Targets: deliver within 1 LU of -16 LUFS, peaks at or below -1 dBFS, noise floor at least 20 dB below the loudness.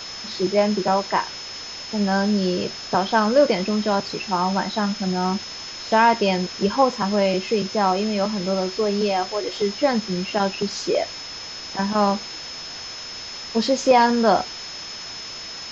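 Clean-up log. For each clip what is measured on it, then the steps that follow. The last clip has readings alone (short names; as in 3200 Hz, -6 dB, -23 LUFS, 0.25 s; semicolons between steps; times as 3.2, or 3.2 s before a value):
steady tone 5200 Hz; tone level -34 dBFS; noise floor -35 dBFS; noise floor target -42 dBFS; loudness -22.0 LUFS; peak -5.0 dBFS; loudness target -16.0 LUFS
-> notch 5200 Hz, Q 30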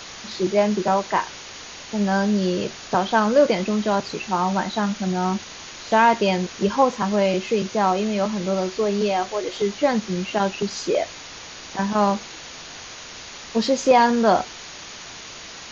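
steady tone none; noise floor -39 dBFS; noise floor target -42 dBFS
-> denoiser 6 dB, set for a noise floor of -39 dBFS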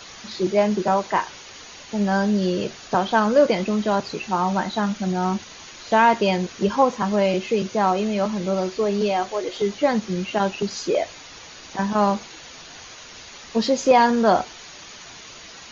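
noise floor -42 dBFS; loudness -21.5 LUFS; peak -5.0 dBFS; loudness target -16.0 LUFS
-> gain +5.5 dB; limiter -1 dBFS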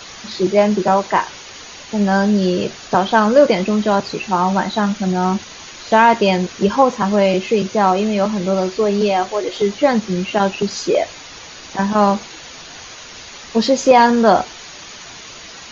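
loudness -16.5 LUFS; peak -1.0 dBFS; noise floor -37 dBFS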